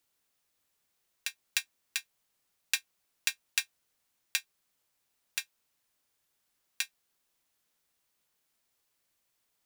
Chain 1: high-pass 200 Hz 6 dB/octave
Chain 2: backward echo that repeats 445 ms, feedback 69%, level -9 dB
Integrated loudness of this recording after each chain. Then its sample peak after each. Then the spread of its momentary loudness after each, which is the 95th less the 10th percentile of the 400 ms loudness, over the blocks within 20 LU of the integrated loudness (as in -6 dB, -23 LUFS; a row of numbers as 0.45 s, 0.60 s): -35.5 LUFS, -37.0 LUFS; -4.5 dBFS, -4.0 dBFS; 7 LU, 19 LU